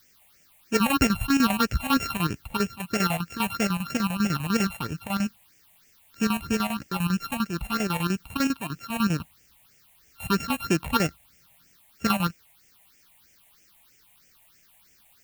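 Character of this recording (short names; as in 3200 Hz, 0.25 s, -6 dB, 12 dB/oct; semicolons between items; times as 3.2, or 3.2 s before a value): a buzz of ramps at a fixed pitch in blocks of 32 samples; chopped level 10 Hz, depth 65%, duty 70%; a quantiser's noise floor 10-bit, dither triangular; phasing stages 6, 3.1 Hz, lowest notch 350–1100 Hz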